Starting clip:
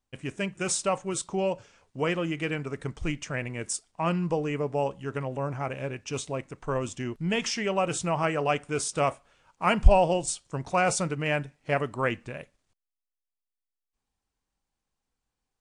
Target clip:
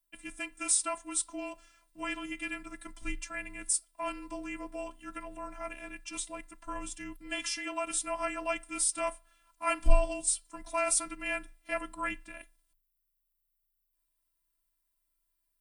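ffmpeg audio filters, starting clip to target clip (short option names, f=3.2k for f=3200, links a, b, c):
-af "equalizer=f=420:w=1:g=-10.5,afftfilt=real='hypot(re,im)*cos(PI*b)':imag='0':win_size=512:overlap=0.75,aexciter=amount=8.6:drive=4.8:freq=9.4k,afreqshift=-27"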